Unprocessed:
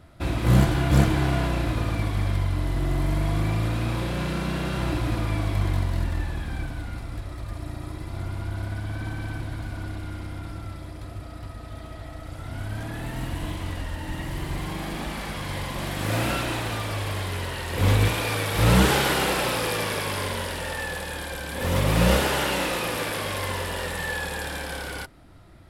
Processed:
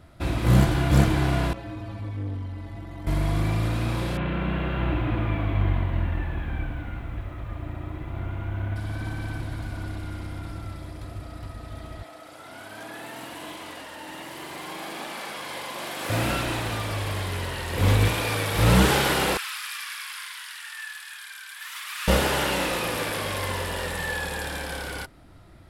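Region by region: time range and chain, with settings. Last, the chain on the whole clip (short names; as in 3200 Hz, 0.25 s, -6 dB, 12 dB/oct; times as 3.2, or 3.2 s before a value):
1.53–3.07 high shelf 5300 Hz -11.5 dB + metallic resonator 100 Hz, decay 0.26 s, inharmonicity 0.008 + core saturation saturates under 200 Hz
4.17–8.76 steep low-pass 3200 Hz + lo-fi delay 81 ms, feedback 80%, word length 9-bit, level -15 dB
12.03–16.1 HPF 390 Hz + notch 1900 Hz, Q 23
19.37–22.08 steep high-pass 1200 Hz + flange 1.6 Hz, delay 1.3 ms, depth 5.5 ms, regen +66%
whole clip: dry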